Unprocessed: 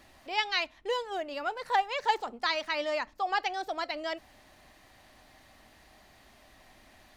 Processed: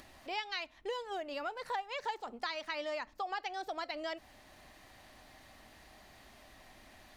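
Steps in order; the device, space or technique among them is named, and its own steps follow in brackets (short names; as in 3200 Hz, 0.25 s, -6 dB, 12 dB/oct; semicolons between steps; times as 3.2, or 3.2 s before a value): upward and downward compression (upward compressor, threshold -52 dBFS; compressor 4:1, threshold -35 dBFS, peak gain reduction 12.5 dB); gain -1 dB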